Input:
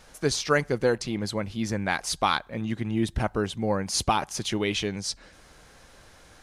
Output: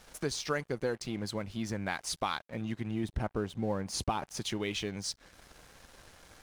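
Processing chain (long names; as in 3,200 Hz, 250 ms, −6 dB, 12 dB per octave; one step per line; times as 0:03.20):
0:03.04–0:04.37: tilt shelving filter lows +3.5 dB, about 1,400 Hz
downward compressor 2 to 1, threshold −40 dBFS, peak gain reduction 13 dB
dead-zone distortion −55.5 dBFS
level +2 dB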